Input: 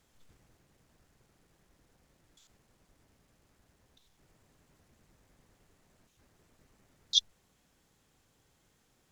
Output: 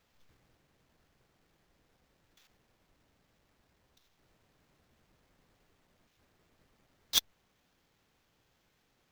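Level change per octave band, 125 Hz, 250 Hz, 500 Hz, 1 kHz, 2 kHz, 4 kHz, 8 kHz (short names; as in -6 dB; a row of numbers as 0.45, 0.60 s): -1.0, +2.5, +5.0, +11.5, +14.5, -3.5, +2.0 dB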